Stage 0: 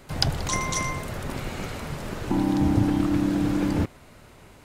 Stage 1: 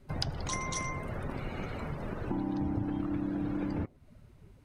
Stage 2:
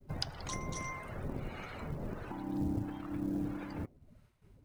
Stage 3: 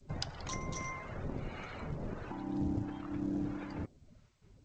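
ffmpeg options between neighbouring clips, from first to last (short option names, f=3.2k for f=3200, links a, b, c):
-af "afftdn=nr=18:nf=-40,bandreject=f=7.2k:w=9.8,acompressor=threshold=-35dB:ratio=2.5"
-filter_complex "[0:a]acrossover=split=720[a][b];[a]aeval=exprs='val(0)*(1-0.7/2+0.7/2*cos(2*PI*1.5*n/s))':c=same[c];[b]aeval=exprs='val(0)*(1-0.7/2-0.7/2*cos(2*PI*1.5*n/s))':c=same[d];[c][d]amix=inputs=2:normalize=0,agate=range=-33dB:threshold=-58dB:ratio=3:detection=peak,acrusher=bits=8:mode=log:mix=0:aa=0.000001,volume=-1dB"
-ar 16000 -c:a g722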